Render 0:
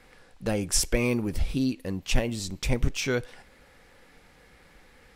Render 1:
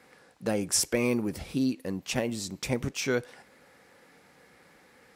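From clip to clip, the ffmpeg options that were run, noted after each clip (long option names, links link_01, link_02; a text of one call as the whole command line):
ffmpeg -i in.wav -af "highpass=150,equalizer=frequency=3100:width=1.4:gain=-4" out.wav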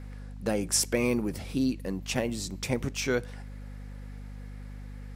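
ffmpeg -i in.wav -af "aeval=exprs='val(0)+0.01*(sin(2*PI*50*n/s)+sin(2*PI*2*50*n/s)/2+sin(2*PI*3*50*n/s)/3+sin(2*PI*4*50*n/s)/4+sin(2*PI*5*50*n/s)/5)':channel_layout=same" out.wav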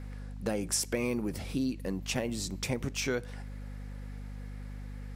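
ffmpeg -i in.wav -af "acompressor=threshold=-29dB:ratio=2.5" out.wav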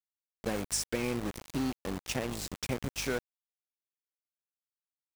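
ffmpeg -i in.wav -af "aresample=22050,aresample=44100,aeval=exprs='val(0)*gte(abs(val(0)),0.0237)':channel_layout=same,volume=-1dB" out.wav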